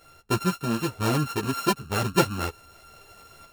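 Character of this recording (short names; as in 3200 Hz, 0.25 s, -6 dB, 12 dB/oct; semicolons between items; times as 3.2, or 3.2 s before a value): a buzz of ramps at a fixed pitch in blocks of 32 samples; tremolo saw up 0.58 Hz, depth 45%; a shimmering, thickened sound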